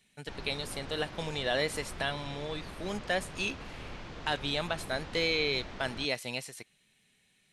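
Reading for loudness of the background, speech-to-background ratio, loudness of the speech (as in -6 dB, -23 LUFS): -45.0 LUFS, 11.5 dB, -33.5 LUFS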